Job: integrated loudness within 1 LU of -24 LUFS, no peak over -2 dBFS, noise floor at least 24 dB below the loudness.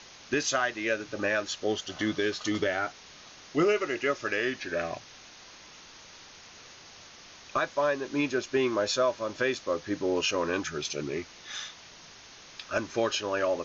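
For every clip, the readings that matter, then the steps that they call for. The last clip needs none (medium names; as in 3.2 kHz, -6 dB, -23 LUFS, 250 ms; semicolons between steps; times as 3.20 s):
noise floor -51 dBFS; noise floor target -54 dBFS; loudness -29.5 LUFS; peak level -16.0 dBFS; loudness target -24.0 LUFS
-> noise reduction 6 dB, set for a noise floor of -51 dBFS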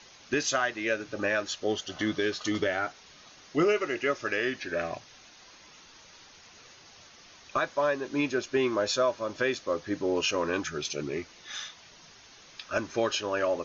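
noise floor -54 dBFS; loudness -29.5 LUFS; peak level -16.0 dBFS; loudness target -24.0 LUFS
-> trim +5.5 dB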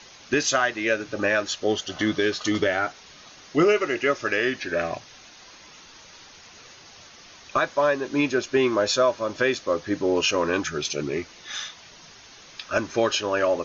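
loudness -24.0 LUFS; peak level -10.5 dBFS; noise floor -48 dBFS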